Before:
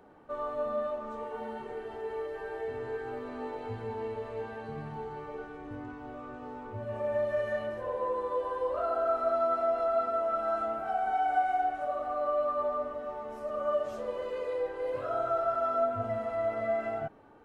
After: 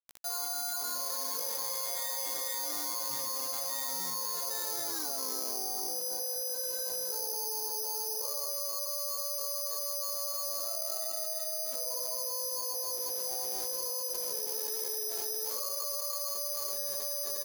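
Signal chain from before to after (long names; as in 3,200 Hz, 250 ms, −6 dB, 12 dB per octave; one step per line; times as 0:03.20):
source passing by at 0:05.05, 56 m/s, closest 7.6 metres
high-pass filter 410 Hz 12 dB per octave
notch filter 3,700 Hz, Q 27
log-companded quantiser 8 bits
double-tracking delay 16 ms −3.5 dB
bad sample-rate conversion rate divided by 8×, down filtered, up zero stuff
envelope flattener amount 100%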